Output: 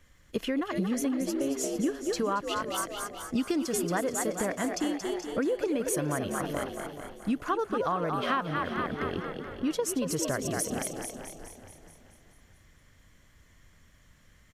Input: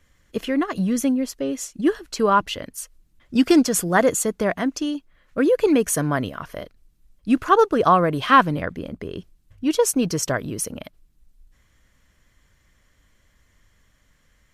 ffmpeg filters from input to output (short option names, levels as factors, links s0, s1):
-filter_complex "[0:a]asplit=2[s0][s1];[s1]asplit=5[s2][s3][s4][s5][s6];[s2]adelay=228,afreqshift=70,volume=0.398[s7];[s3]adelay=456,afreqshift=140,volume=0.168[s8];[s4]adelay=684,afreqshift=210,volume=0.07[s9];[s5]adelay=912,afreqshift=280,volume=0.0295[s10];[s6]adelay=1140,afreqshift=350,volume=0.0124[s11];[s7][s8][s9][s10][s11]amix=inputs=5:normalize=0[s12];[s0][s12]amix=inputs=2:normalize=0,acompressor=threshold=0.0447:ratio=6,asplit=2[s13][s14];[s14]aecho=0:1:428|856|1284|1712:0.266|0.0984|0.0364|0.0135[s15];[s13][s15]amix=inputs=2:normalize=0"